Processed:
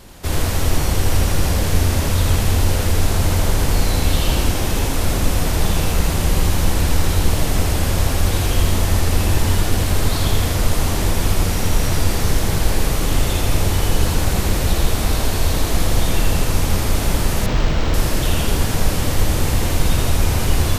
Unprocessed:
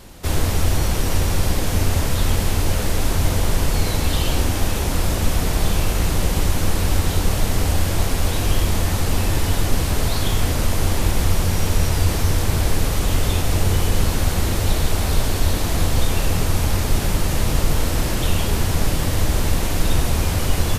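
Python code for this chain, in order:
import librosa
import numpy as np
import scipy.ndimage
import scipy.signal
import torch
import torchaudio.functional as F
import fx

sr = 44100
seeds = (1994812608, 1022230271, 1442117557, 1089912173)

y = fx.echo_split(x, sr, split_hz=400.0, low_ms=339, high_ms=81, feedback_pct=52, wet_db=-4)
y = fx.resample_linear(y, sr, factor=4, at=(17.46, 17.94))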